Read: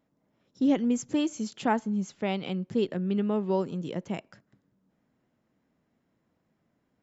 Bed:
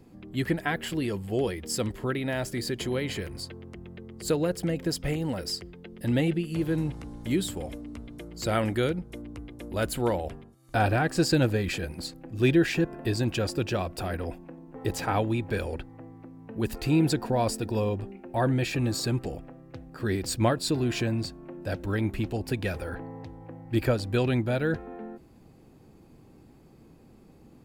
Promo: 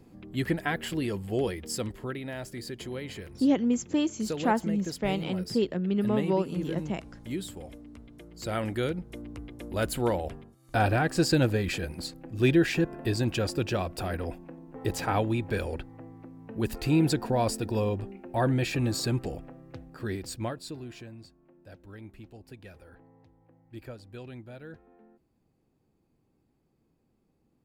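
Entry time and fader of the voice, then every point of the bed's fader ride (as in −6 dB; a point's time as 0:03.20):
2.80 s, +0.5 dB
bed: 0:01.49 −1 dB
0:02.30 −7.5 dB
0:08.14 −7.5 dB
0:09.26 −0.5 dB
0:19.73 −0.5 dB
0:21.12 −18 dB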